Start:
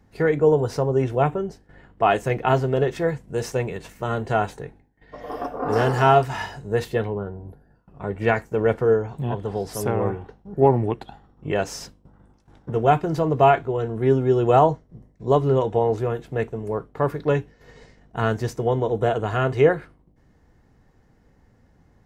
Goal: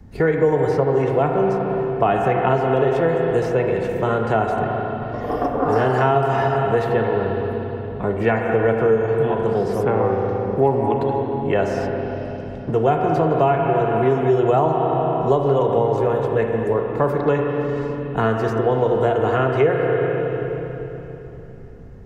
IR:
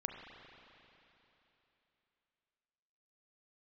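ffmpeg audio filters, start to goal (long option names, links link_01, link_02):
-filter_complex "[0:a]lowshelf=frequency=360:gain=11.5[link_01];[1:a]atrim=start_sample=2205[link_02];[link_01][link_02]afir=irnorm=-1:irlink=0,acrossover=split=240|490|3100[link_03][link_04][link_05][link_06];[link_03]acompressor=threshold=-36dB:ratio=4[link_07];[link_04]acompressor=threshold=-31dB:ratio=4[link_08];[link_05]acompressor=threshold=-24dB:ratio=4[link_09];[link_06]acompressor=threshold=-57dB:ratio=4[link_10];[link_07][link_08][link_09][link_10]amix=inputs=4:normalize=0,volume=6dB"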